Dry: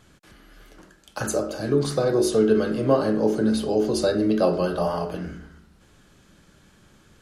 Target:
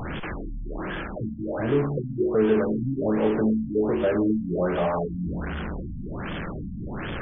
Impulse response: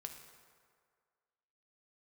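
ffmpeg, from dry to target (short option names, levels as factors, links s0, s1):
-af "aeval=exprs='val(0)+0.5*0.0944*sgn(val(0))':c=same,afftfilt=real='re*lt(b*sr/1024,270*pow(3600/270,0.5+0.5*sin(2*PI*1.3*pts/sr)))':imag='im*lt(b*sr/1024,270*pow(3600/270,0.5+0.5*sin(2*PI*1.3*pts/sr)))':win_size=1024:overlap=0.75,volume=0.631"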